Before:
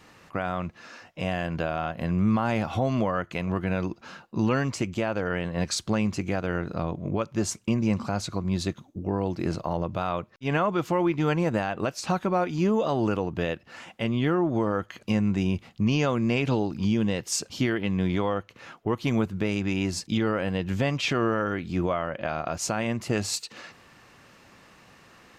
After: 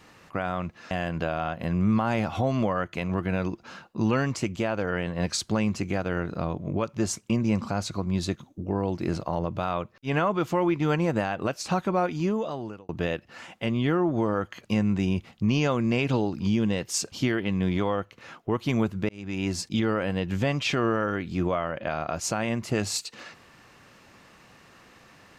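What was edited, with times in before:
0.91–1.29 cut
12.45–13.27 fade out
19.47–19.88 fade in

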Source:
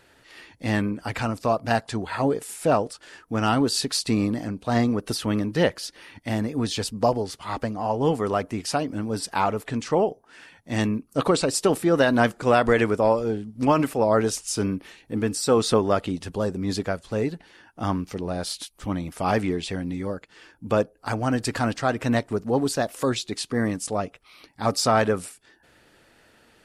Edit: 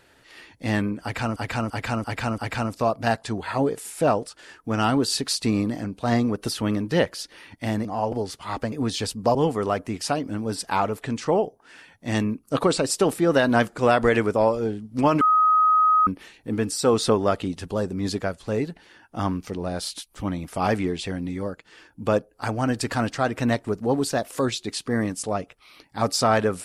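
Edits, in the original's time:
1.02–1.36 loop, 5 plays
6.49–7.12 swap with 7.72–7.99
13.85–14.71 bleep 1260 Hz -14.5 dBFS

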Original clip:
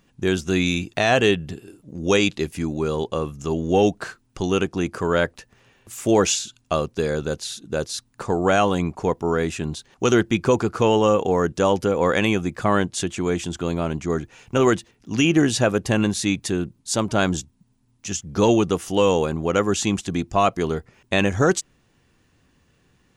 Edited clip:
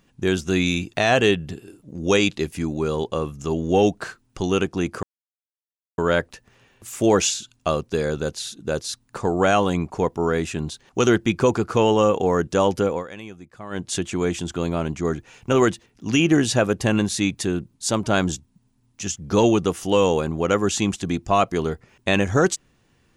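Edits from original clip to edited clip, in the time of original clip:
5.03 insert silence 0.95 s
11.92–12.92 dip -17.5 dB, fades 0.17 s

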